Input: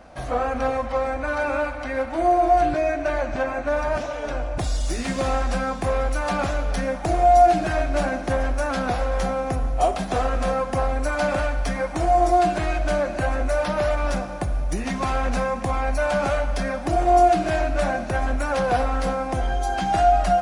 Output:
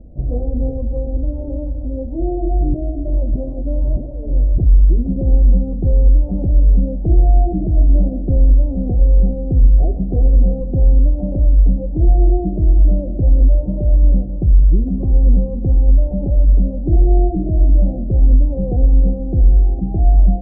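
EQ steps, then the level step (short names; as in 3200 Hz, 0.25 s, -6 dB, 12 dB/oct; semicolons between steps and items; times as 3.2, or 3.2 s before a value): inverse Chebyshev low-pass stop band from 1600 Hz, stop band 60 dB; air absorption 390 m; tilt -3.5 dB/oct; 0.0 dB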